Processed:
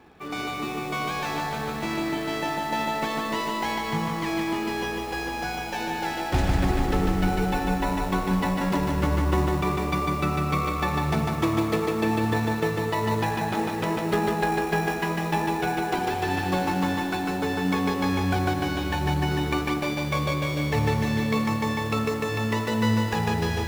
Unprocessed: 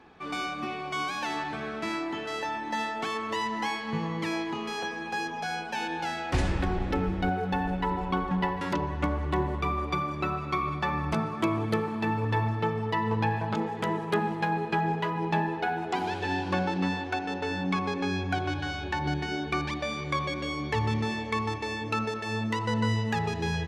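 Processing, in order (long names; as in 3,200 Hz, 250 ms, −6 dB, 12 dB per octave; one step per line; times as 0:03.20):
in parallel at −8 dB: sample-rate reduction 1,600 Hz, jitter 0%
on the sum: feedback echo at a low word length 149 ms, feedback 80%, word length 8 bits, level −3.5 dB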